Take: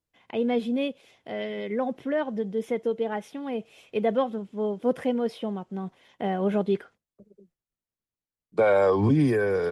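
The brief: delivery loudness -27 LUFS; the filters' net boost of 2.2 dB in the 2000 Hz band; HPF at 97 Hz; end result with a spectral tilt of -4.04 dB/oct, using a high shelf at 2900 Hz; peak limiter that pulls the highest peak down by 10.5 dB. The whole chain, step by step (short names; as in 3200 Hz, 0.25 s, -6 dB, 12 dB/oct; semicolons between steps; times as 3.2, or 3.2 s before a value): HPF 97 Hz; bell 2000 Hz +6 dB; high shelf 2900 Hz -8.5 dB; gain +4 dB; limiter -17 dBFS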